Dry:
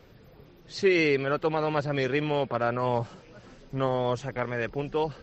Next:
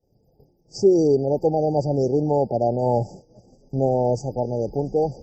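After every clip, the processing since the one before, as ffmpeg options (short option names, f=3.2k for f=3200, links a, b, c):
-af "afftfilt=real='re*(1-between(b*sr/4096,890,4600))':imag='im*(1-between(b*sr/4096,890,4600))':win_size=4096:overlap=0.75,agate=range=-33dB:threshold=-42dB:ratio=3:detection=peak,volume=7dB"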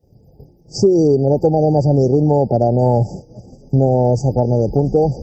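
-af "highpass=42,lowshelf=f=200:g=10,acompressor=threshold=-19dB:ratio=4,volume=8.5dB"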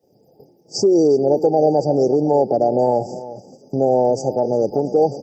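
-filter_complex "[0:a]alimiter=limit=-6.5dB:level=0:latency=1:release=89,highpass=320,asplit=2[a][b];[b]adelay=355.7,volume=-15dB,highshelf=f=4k:g=-8[c];[a][c]amix=inputs=2:normalize=0,volume=2dB"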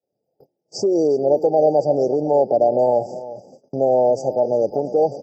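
-af "agate=range=-19dB:threshold=-44dB:ratio=16:detection=peak,equalizer=f=610:t=o:w=0.72:g=8.5,volume=-6dB"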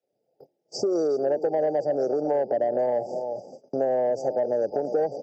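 -filter_complex "[0:a]equalizer=f=1k:t=o:w=0.86:g=-4.5,asplit=2[a][b];[b]highpass=f=720:p=1,volume=11dB,asoftclip=type=tanh:threshold=-5dB[c];[a][c]amix=inputs=2:normalize=0,lowpass=f=2.6k:p=1,volume=-6dB,acrossover=split=170|670[d][e][f];[d]acompressor=threshold=-50dB:ratio=4[g];[e]acompressor=threshold=-25dB:ratio=4[h];[f]acompressor=threshold=-33dB:ratio=4[i];[g][h][i]amix=inputs=3:normalize=0"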